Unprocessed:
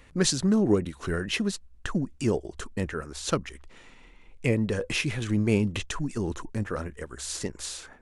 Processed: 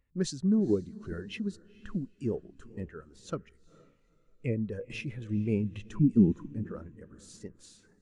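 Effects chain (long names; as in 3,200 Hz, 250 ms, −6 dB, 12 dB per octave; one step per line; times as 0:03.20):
0:05.86–0:06.51: parametric band 210 Hz +14.5 dB 1.5 octaves
on a send: feedback delay with all-pass diffusion 458 ms, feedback 42%, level −13.5 dB
on the sum: every bin expanded away from the loudest bin 1.5 to 1
level −3 dB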